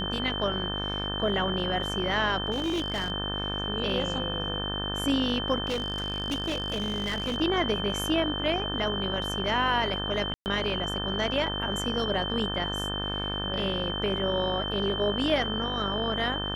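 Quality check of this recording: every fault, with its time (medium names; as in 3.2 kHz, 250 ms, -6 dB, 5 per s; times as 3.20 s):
buzz 50 Hz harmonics 36 -34 dBFS
whine 3.1 kHz -32 dBFS
2.51–3.12 s: clipped -25 dBFS
5.69–7.38 s: clipped -25.5 dBFS
10.34–10.46 s: dropout 119 ms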